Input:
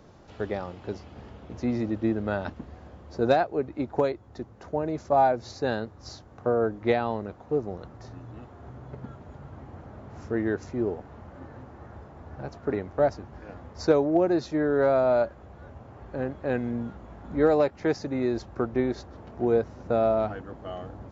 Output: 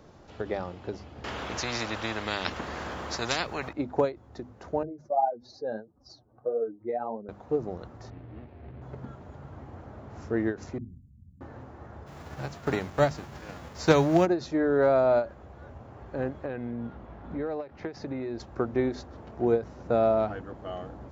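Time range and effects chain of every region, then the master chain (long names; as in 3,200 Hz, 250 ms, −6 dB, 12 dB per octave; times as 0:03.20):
0:01.24–0:03.73: upward compression, threshold −40 dBFS + every bin compressed towards the loudest bin 4 to 1
0:04.83–0:07.29: expanding power law on the bin magnitudes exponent 2 + parametric band 82 Hz −14.5 dB 1.8 octaves + flanger 1.7 Hz, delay 3.5 ms, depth 6.6 ms, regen +29%
0:08.10–0:08.82: running median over 41 samples + low-pass filter 3,600 Hz 24 dB per octave + double-tracking delay 13 ms −11 dB
0:10.78–0:11.41: inverse Chebyshev band-stop filter 460–4,300 Hz, stop band 50 dB + output level in coarse steps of 9 dB
0:12.06–0:14.25: spectral envelope flattened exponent 0.6 + parametric band 150 Hz +6.5 dB 0.58 octaves
0:16.45–0:18.40: low-pass filter 4,000 Hz + downward compressor, threshold −29 dBFS
whole clip: mains-hum notches 50/100/150/200/250 Hz; every ending faded ahead of time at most 220 dB per second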